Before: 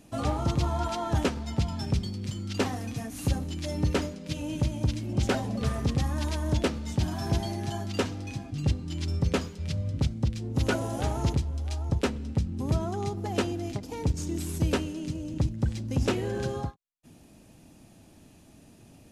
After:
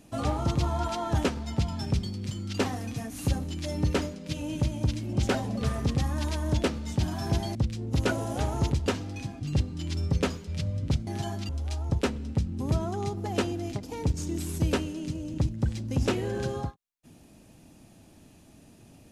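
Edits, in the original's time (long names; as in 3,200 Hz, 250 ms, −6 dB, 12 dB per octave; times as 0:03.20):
0:07.55–0:07.97: swap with 0:10.18–0:11.49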